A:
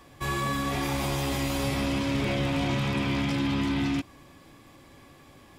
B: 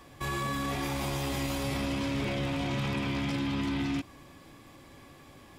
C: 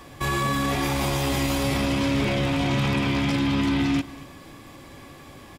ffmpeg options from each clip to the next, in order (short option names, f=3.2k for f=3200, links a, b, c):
-af "alimiter=limit=-24dB:level=0:latency=1:release=34"
-af "aecho=1:1:235:0.106,volume=8dB"